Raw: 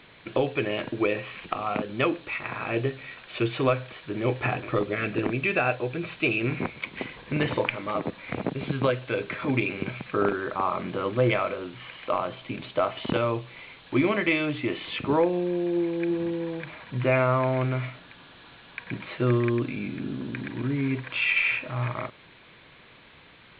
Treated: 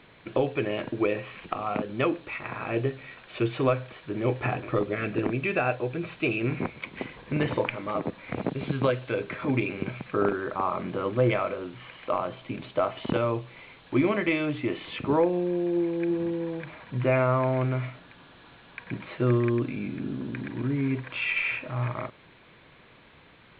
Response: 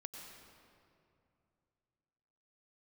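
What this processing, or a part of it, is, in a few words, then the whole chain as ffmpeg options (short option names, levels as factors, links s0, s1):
behind a face mask: -filter_complex "[0:a]asettb=1/sr,asplit=3[s0][s1][s2];[s0]atrim=end=8.374[s3];[s1]atrim=start=8.37:end=9.12,asetpts=PTS-STARTPTS,afade=t=in:d=0.004:c=qsin,afade=t=out:st=0.746:d=0.004:c=qsin,highshelf=f=3800:g=6[s4];[s2]atrim=start=9.116[s5];[s3][s4]acrossfade=d=0.004:c1=hsin:c2=qsin[s6];[s6][s5]acrossfade=d=0.004:c1=qsin:c2=hsin,highshelf=f=2100:g=-7"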